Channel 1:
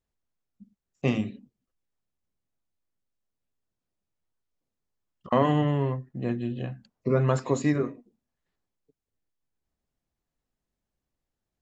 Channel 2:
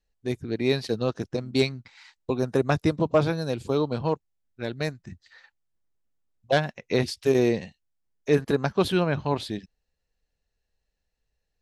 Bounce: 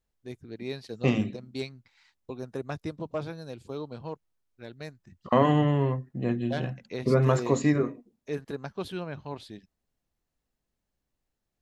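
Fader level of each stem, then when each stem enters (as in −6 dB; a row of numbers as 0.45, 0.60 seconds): +1.0, −12.0 decibels; 0.00, 0.00 seconds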